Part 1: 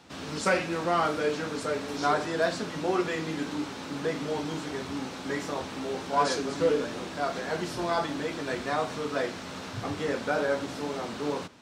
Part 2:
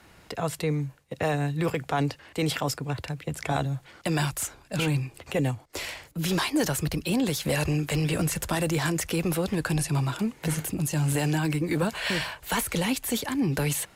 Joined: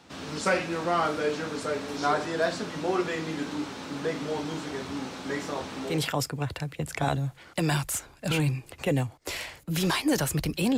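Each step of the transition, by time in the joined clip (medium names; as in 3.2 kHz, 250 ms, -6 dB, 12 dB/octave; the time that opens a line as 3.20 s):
part 1
5.94 s: go over to part 2 from 2.42 s, crossfade 0.30 s equal-power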